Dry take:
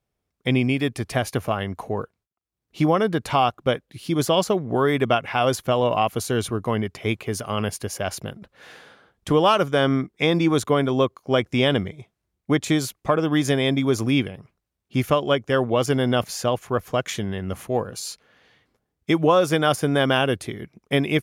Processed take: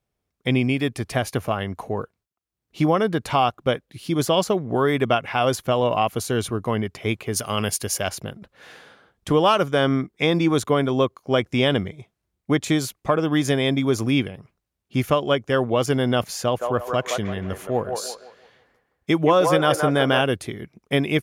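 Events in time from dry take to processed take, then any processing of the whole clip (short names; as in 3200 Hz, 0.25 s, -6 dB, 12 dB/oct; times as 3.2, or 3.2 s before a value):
7.36–8.09 high shelf 2900 Hz +9.5 dB
16.42–20.21 band-limited delay 0.169 s, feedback 35%, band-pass 890 Hz, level -3 dB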